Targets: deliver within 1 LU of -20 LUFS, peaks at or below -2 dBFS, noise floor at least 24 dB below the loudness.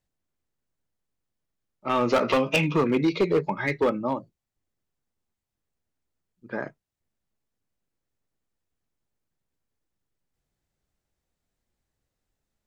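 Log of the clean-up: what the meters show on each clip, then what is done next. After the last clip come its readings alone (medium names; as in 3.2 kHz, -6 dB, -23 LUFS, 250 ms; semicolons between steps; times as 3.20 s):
clipped samples 0.6%; clipping level -16.0 dBFS; loudness -25.0 LUFS; peak level -16.0 dBFS; loudness target -20.0 LUFS
-> clip repair -16 dBFS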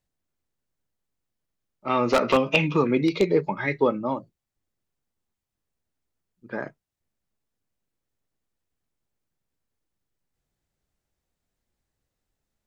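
clipped samples 0.0%; loudness -23.0 LUFS; peak level -7.0 dBFS; loudness target -20.0 LUFS
-> trim +3 dB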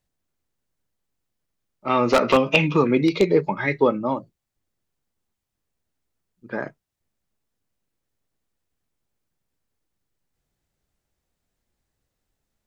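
loudness -20.0 LUFS; peak level -4.0 dBFS; noise floor -81 dBFS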